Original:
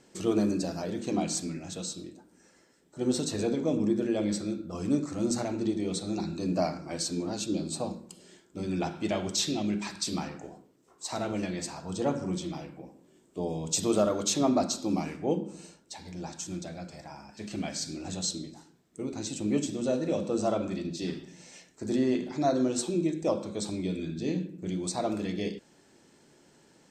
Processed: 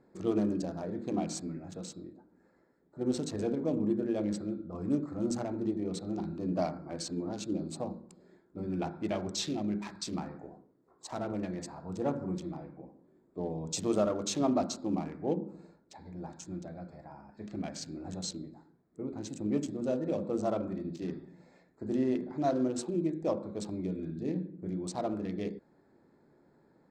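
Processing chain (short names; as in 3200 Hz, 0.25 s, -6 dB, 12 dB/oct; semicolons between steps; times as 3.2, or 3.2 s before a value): Wiener smoothing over 15 samples; high shelf 7700 Hz -10.5 dB; gain -3 dB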